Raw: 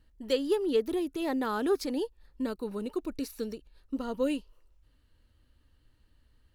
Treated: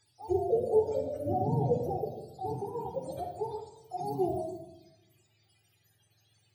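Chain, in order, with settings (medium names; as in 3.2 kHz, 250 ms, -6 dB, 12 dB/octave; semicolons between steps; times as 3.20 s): spectrum inverted on a logarithmic axis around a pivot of 440 Hz; simulated room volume 3600 m³, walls furnished, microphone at 3.9 m; trim -2.5 dB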